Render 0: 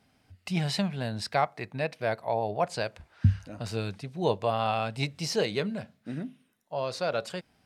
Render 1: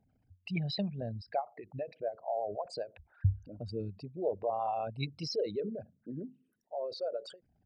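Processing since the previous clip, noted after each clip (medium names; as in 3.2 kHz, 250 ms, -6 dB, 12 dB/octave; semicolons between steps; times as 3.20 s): resonances exaggerated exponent 3; endings held to a fixed fall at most 280 dB/s; trim -5.5 dB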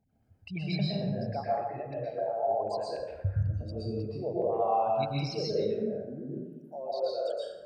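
plate-style reverb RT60 1.2 s, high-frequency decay 0.5×, pre-delay 105 ms, DRR -6.5 dB; trim -3 dB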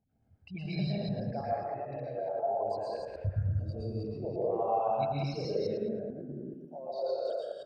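chunks repeated in reverse 109 ms, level -1 dB; treble shelf 4.6 kHz -9 dB; trim -4.5 dB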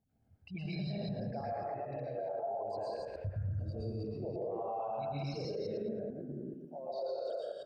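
peak limiter -29 dBFS, peak gain reduction 10 dB; trim -1.5 dB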